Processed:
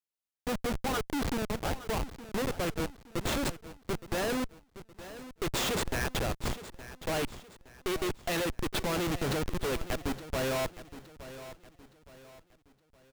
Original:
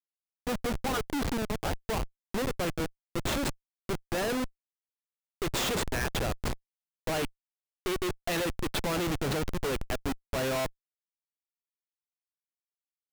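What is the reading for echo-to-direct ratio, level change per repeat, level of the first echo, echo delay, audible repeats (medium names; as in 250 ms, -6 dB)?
-14.0 dB, -8.5 dB, -14.5 dB, 867 ms, 3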